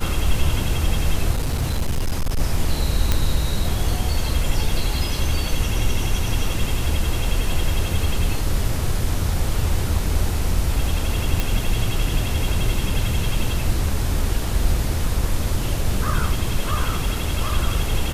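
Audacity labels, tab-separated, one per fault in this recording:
1.340000	2.400000	clipped -17 dBFS
3.120000	3.120000	pop -4 dBFS
11.400000	11.400000	pop

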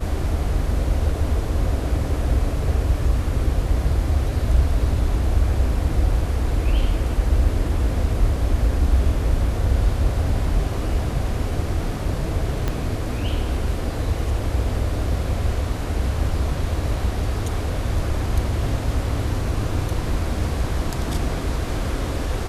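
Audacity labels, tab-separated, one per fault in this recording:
12.680000	12.680000	pop -10 dBFS

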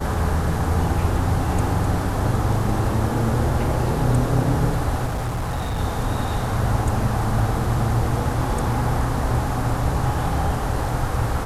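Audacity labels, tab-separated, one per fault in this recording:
5.060000	5.790000	clipped -21 dBFS

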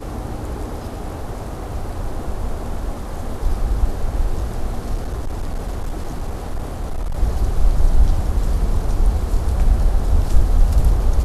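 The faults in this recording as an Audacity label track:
4.940000	7.170000	clipped -19 dBFS

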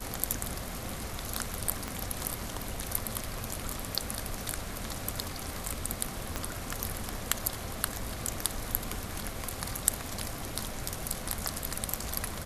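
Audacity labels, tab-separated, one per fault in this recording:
1.880000	1.880000	pop -19 dBFS
6.360000	6.360000	pop -16 dBFS

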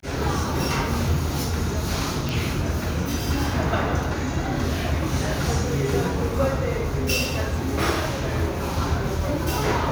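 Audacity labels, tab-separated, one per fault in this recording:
2.290000	2.290000	pop

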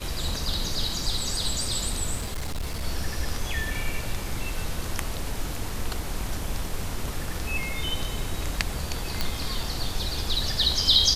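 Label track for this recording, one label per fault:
2.190000	2.840000	clipped -26 dBFS
9.210000	9.210000	pop -10 dBFS

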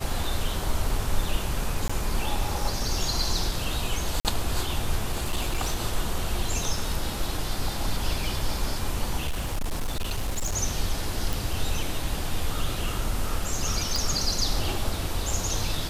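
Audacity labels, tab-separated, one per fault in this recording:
1.880000	1.900000	dropout 15 ms
4.200000	4.250000	dropout 48 ms
5.110000	5.750000	clipped -21 dBFS
9.260000	10.560000	clipped -23.5 dBFS
11.330000	11.330000	pop
13.960000	13.960000	pop

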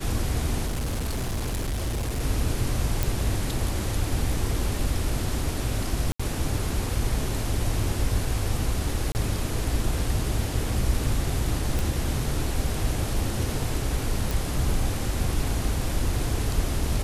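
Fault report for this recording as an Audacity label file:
0.660000	2.210000	clipped -24 dBFS
3.030000	3.030000	pop
6.120000	6.200000	dropout 75 ms
9.120000	9.150000	dropout 29 ms
11.790000	11.790000	pop
14.310000	14.310000	pop

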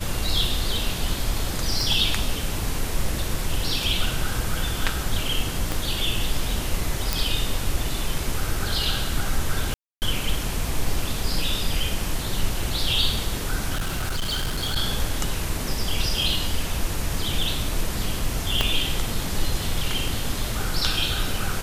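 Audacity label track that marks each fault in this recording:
1.810000	1.810000	pop
5.720000	5.720000	pop
7.130000	7.130000	pop
9.740000	10.020000	dropout 279 ms
13.740000	14.770000	clipped -21.5 dBFS
18.610000	18.610000	pop -5 dBFS

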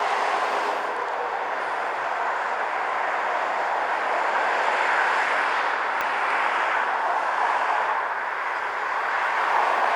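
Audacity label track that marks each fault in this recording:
6.010000	6.010000	pop -12 dBFS

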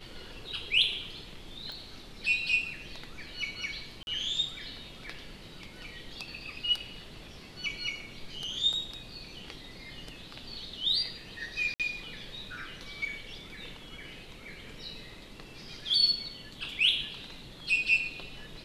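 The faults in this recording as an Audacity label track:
1.720000	1.720000	pop
4.030000	4.070000	dropout 41 ms
11.740000	11.800000	dropout 57 ms

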